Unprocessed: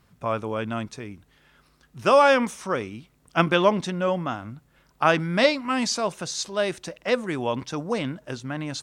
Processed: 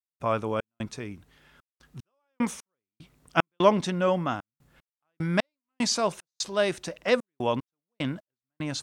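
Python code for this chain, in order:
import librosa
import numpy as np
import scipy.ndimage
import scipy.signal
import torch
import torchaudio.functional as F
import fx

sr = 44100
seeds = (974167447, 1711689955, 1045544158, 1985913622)

y = fx.step_gate(x, sr, bpm=75, pattern='.xx.xxxx.x..x.', floor_db=-60.0, edge_ms=4.5)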